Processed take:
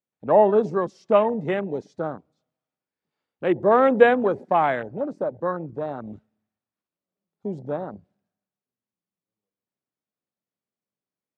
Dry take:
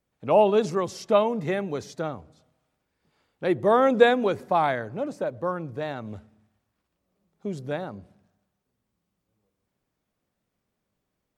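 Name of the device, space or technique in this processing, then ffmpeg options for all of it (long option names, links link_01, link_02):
over-cleaned archive recording: -af "highpass=150,lowpass=7000,afwtdn=0.0224,volume=2.5dB"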